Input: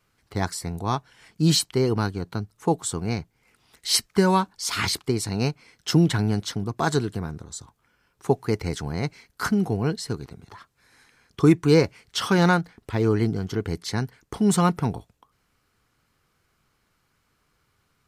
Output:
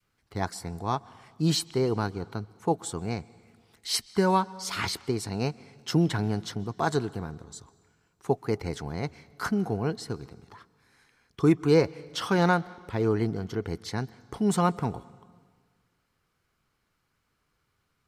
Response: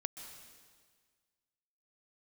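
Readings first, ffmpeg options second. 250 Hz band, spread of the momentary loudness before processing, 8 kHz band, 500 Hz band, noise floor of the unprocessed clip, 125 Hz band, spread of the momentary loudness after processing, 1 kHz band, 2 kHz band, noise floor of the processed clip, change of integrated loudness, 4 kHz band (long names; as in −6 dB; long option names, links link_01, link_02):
−4.5 dB, 13 LU, −7.5 dB, −3.0 dB, −70 dBFS, −5.5 dB, 14 LU, −2.0 dB, −4.5 dB, −75 dBFS, −4.0 dB, −6.0 dB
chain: -filter_complex "[0:a]adynamicequalizer=threshold=0.0224:dfrequency=690:dqfactor=0.76:tfrequency=690:tqfactor=0.76:attack=5:release=100:ratio=0.375:range=2.5:mode=boostabove:tftype=bell,asplit=2[link_01][link_02];[1:a]atrim=start_sample=2205,lowpass=6700[link_03];[link_02][link_03]afir=irnorm=-1:irlink=0,volume=-11.5dB[link_04];[link_01][link_04]amix=inputs=2:normalize=0,volume=-7.5dB"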